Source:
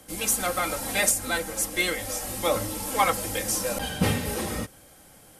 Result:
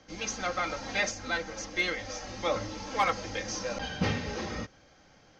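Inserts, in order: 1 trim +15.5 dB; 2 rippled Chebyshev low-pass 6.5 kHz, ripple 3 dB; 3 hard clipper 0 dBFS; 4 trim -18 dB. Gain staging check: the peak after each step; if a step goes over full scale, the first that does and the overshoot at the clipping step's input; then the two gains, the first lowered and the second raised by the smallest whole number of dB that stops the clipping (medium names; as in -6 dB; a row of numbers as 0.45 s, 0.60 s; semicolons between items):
+7.5 dBFS, +4.0 dBFS, 0.0 dBFS, -18.0 dBFS; step 1, 4.0 dB; step 1 +11.5 dB, step 4 -14 dB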